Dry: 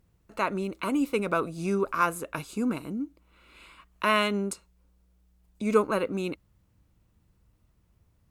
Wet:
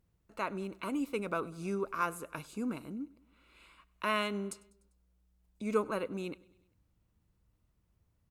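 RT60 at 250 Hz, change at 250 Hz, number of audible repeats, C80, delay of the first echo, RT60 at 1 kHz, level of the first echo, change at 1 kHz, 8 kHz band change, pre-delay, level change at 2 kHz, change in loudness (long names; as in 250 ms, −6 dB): no reverb audible, −8.0 dB, 3, no reverb audible, 99 ms, no reverb audible, −23.5 dB, −8.0 dB, −8.0 dB, no reverb audible, −8.0 dB, −8.0 dB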